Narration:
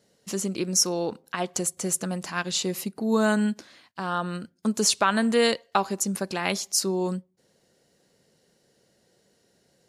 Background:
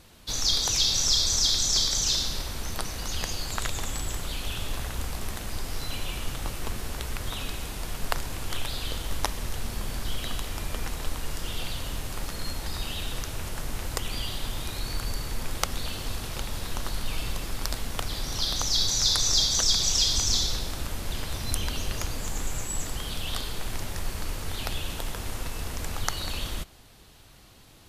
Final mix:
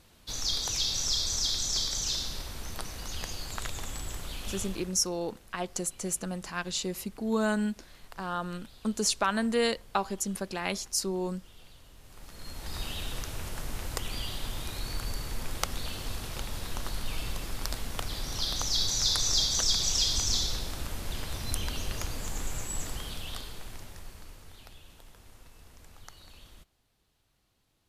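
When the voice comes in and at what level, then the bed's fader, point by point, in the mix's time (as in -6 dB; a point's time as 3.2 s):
4.20 s, -5.5 dB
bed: 4.63 s -6 dB
5.05 s -21.5 dB
11.95 s -21.5 dB
12.78 s -3.5 dB
22.9 s -3.5 dB
24.8 s -20.5 dB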